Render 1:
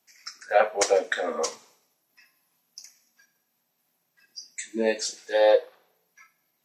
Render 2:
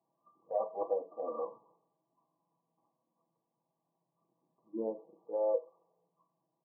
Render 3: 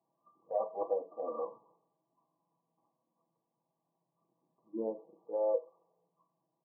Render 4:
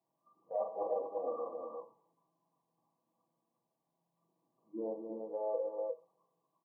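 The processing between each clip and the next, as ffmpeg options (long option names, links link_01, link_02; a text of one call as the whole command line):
ffmpeg -i in.wav -af "afftfilt=real='re*between(b*sr/4096,100,1200)':imag='im*between(b*sr/4096,100,1200)':win_size=4096:overlap=0.75,aecho=1:1:6.1:0.56,acompressor=threshold=-42dB:ratio=1.5,volume=-4dB" out.wav
ffmpeg -i in.wav -af anull out.wav
ffmpeg -i in.wav -af "aecho=1:1:42|112|196|241|256|354:0.631|0.2|0.1|0.447|0.141|0.631,volume=-4dB" out.wav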